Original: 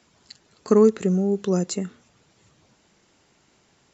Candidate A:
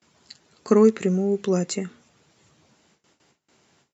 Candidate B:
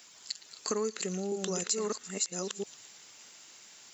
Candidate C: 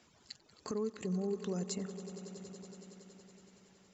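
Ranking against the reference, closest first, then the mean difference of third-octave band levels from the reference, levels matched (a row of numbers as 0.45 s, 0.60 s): A, C, B; 1.0 dB, 6.5 dB, 9.0 dB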